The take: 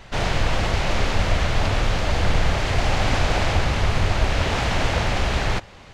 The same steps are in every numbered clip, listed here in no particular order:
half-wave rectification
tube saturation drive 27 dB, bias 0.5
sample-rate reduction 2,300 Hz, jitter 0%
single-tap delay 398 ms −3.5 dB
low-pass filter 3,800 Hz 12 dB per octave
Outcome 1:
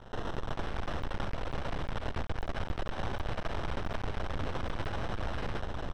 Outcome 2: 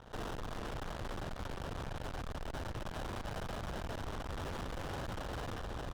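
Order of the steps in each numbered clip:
sample-rate reduction, then single-tap delay, then tube saturation, then half-wave rectification, then low-pass filter
sample-rate reduction, then low-pass filter, then half-wave rectification, then single-tap delay, then tube saturation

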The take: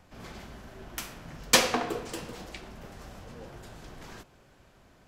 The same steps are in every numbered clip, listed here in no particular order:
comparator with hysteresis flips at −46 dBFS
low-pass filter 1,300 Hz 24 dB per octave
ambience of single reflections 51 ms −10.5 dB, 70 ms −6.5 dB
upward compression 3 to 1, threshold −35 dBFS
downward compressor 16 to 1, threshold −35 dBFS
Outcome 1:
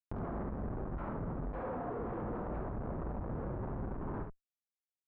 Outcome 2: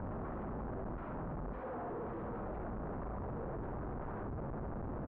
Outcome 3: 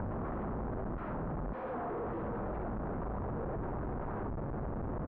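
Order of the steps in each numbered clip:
downward compressor, then comparator with hysteresis, then low-pass filter, then upward compression, then ambience of single reflections
downward compressor, then upward compression, then ambience of single reflections, then comparator with hysteresis, then low-pass filter
ambience of single reflections, then upward compression, then comparator with hysteresis, then low-pass filter, then downward compressor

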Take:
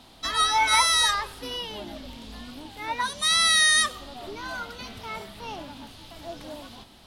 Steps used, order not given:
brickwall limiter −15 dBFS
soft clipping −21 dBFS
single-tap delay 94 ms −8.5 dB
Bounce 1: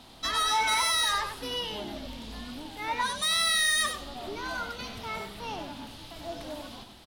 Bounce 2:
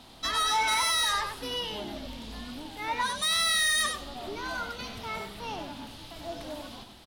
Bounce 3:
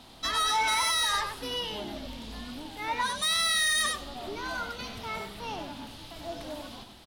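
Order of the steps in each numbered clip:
brickwall limiter, then soft clipping, then single-tap delay
brickwall limiter, then single-tap delay, then soft clipping
single-tap delay, then brickwall limiter, then soft clipping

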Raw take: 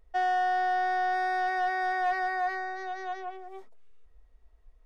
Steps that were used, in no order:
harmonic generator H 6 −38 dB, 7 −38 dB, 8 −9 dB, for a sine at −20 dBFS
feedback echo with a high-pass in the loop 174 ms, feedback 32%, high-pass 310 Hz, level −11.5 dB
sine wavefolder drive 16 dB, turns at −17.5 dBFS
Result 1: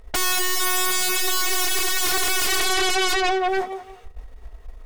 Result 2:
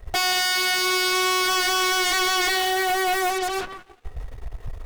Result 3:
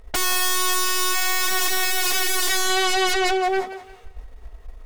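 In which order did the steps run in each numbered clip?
feedback echo with a high-pass in the loop, then harmonic generator, then sine wavefolder
sine wavefolder, then feedback echo with a high-pass in the loop, then harmonic generator
harmonic generator, then sine wavefolder, then feedback echo with a high-pass in the loop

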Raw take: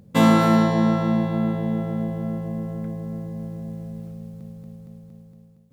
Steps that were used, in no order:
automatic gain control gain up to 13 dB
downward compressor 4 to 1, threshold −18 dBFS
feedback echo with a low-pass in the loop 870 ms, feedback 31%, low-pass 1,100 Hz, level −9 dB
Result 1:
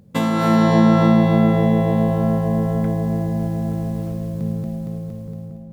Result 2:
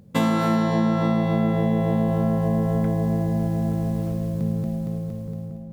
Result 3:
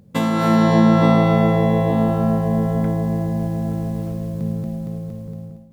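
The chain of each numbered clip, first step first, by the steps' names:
downward compressor, then automatic gain control, then feedback echo with a low-pass in the loop
automatic gain control, then feedback echo with a low-pass in the loop, then downward compressor
feedback echo with a low-pass in the loop, then downward compressor, then automatic gain control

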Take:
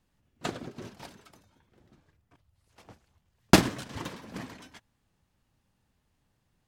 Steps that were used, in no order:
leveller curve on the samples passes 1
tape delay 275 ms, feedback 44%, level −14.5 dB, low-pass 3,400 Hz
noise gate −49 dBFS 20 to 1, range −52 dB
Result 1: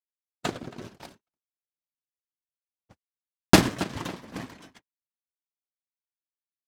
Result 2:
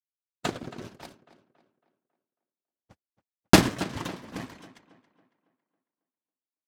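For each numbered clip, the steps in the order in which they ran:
tape delay, then noise gate, then leveller curve on the samples
noise gate, then leveller curve on the samples, then tape delay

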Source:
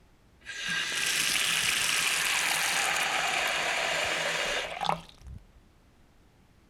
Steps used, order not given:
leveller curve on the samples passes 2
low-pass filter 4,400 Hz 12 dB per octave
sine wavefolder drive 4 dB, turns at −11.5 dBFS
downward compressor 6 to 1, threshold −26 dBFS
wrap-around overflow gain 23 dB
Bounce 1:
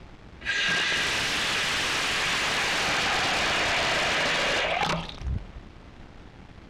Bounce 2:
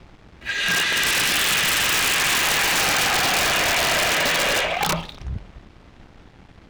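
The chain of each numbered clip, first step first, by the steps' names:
wrap-around overflow, then sine wavefolder, then downward compressor, then leveller curve on the samples, then low-pass filter
low-pass filter, then wrap-around overflow, then downward compressor, then sine wavefolder, then leveller curve on the samples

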